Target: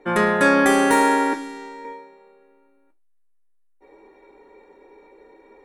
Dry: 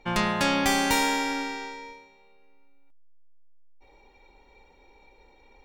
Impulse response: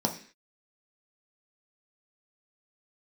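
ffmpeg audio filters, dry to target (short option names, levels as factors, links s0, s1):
-filter_complex "[0:a]asettb=1/sr,asplit=3[s0][s1][s2];[s0]atrim=end=1.334[s3];[s1]atrim=start=1.33:end=1.85,asetpts=PTS-STARTPTS,afade=t=in:d=0.004:c=qsin,afade=t=out:st=0.516:d=0.004:c=qsin,acrossover=split=220|3000[s4][s5][s6];[s5]acompressor=threshold=0.00631:ratio=6[s7];[s4][s7][s6]amix=inputs=3:normalize=0[s8];[s2]atrim=start=1.846[s9];[s3][s8]acrossfade=d=0.004:c1=hsin:c2=qsin[s10];[s10][s9]acrossfade=d=0.004:c1=qsin:c2=hsin[s11];[1:a]atrim=start_sample=2205,asetrate=83790,aresample=44100[s12];[s11][s12]afir=irnorm=-1:irlink=0"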